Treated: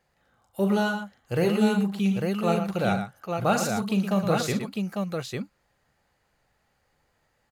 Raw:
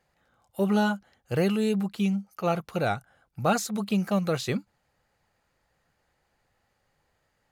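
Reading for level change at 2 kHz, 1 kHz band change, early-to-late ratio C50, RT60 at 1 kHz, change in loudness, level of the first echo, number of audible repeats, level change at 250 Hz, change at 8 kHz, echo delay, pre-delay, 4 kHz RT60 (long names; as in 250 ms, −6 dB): +2.5 dB, +2.0 dB, no reverb audible, no reverb audible, +1.5 dB, −8.5 dB, 3, +2.5 dB, +2.0 dB, 41 ms, no reverb audible, no reverb audible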